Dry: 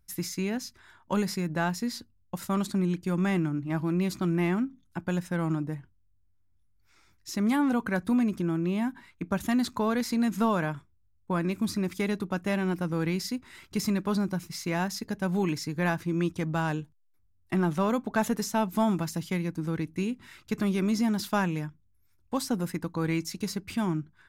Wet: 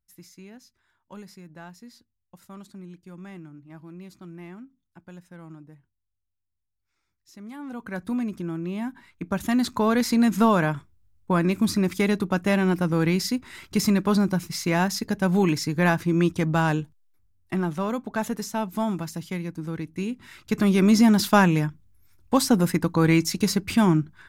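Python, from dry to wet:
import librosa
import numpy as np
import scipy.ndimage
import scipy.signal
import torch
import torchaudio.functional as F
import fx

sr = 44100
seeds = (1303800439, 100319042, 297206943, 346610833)

y = fx.gain(x, sr, db=fx.line((7.53, -15.0), (8.01, -2.5), (8.69, -2.5), (10.02, 6.5), (16.81, 6.5), (17.74, -1.0), (19.87, -1.0), (20.93, 9.5)))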